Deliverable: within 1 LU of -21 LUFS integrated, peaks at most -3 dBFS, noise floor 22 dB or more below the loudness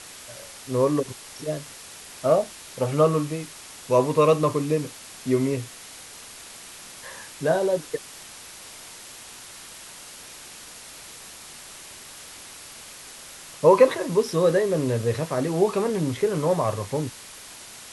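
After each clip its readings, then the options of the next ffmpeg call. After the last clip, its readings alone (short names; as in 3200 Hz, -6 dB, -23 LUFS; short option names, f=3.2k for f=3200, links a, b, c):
noise floor -43 dBFS; noise floor target -46 dBFS; loudness -23.5 LUFS; peak -4.5 dBFS; loudness target -21.0 LUFS
-> -af "afftdn=nr=6:nf=-43"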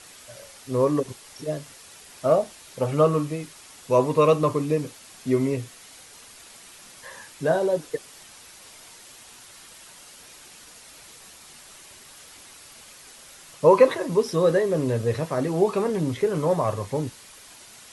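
noise floor -48 dBFS; loudness -23.5 LUFS; peak -4.5 dBFS; loudness target -21.0 LUFS
-> -af "volume=2.5dB,alimiter=limit=-3dB:level=0:latency=1"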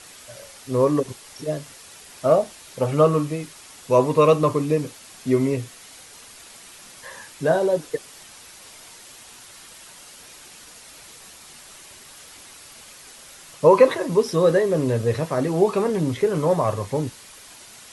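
loudness -21.0 LUFS; peak -3.0 dBFS; noise floor -45 dBFS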